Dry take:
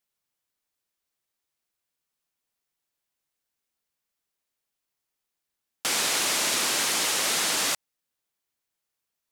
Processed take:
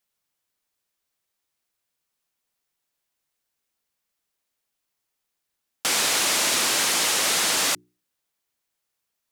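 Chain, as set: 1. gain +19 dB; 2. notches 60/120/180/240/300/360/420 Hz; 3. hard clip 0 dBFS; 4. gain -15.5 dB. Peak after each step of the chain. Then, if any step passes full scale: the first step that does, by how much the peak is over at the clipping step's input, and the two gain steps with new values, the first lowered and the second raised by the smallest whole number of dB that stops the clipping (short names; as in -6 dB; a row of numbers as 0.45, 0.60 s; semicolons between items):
+7.0, +7.0, 0.0, -15.5 dBFS; step 1, 7.0 dB; step 1 +12 dB, step 4 -8.5 dB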